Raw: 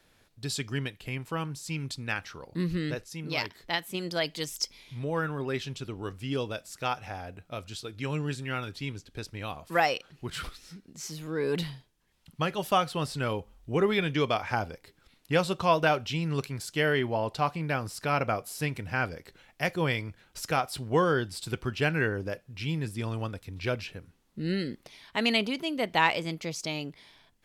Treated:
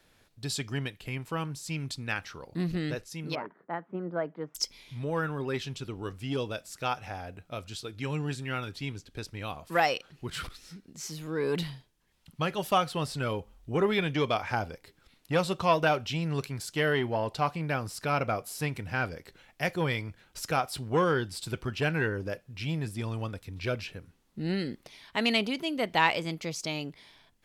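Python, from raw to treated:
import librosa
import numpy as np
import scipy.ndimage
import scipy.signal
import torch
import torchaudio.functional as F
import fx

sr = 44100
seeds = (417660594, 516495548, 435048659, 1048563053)

y = fx.cheby1_bandpass(x, sr, low_hz=170.0, high_hz=1400.0, order=3, at=(3.35, 4.55))
y = fx.transformer_sat(y, sr, knee_hz=810.0)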